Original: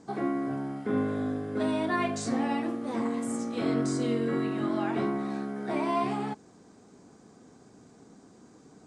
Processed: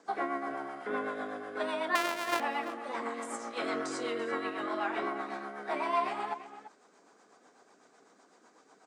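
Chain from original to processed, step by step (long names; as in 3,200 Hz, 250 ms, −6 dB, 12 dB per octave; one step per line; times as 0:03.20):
0:01.95–0:02.40: samples sorted by size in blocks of 128 samples
high-pass filter 880 Hz 12 dB per octave
high-shelf EQ 3,000 Hz −11.5 dB
in parallel at +1 dB: speech leveller 2 s
on the sum: rotating-speaker cabinet horn 8 Hz
slap from a distant wall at 58 metres, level −12 dB
level +2 dB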